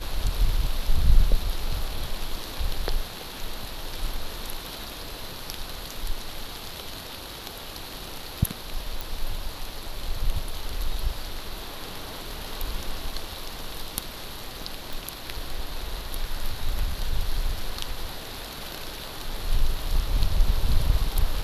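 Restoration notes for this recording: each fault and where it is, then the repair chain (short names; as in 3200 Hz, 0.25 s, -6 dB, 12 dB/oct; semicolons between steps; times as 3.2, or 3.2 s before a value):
9.01 pop
14.93 pop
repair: de-click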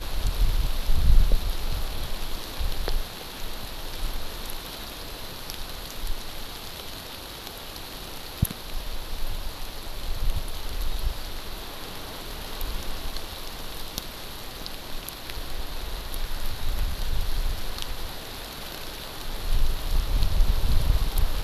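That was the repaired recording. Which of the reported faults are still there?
none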